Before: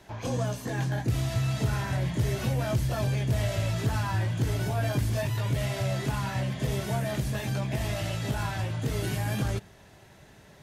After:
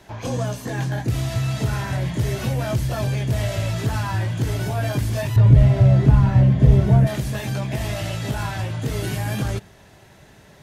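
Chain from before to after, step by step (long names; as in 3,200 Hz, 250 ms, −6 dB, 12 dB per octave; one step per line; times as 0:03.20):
0:05.36–0:07.07: spectral tilt −4 dB per octave
level +4.5 dB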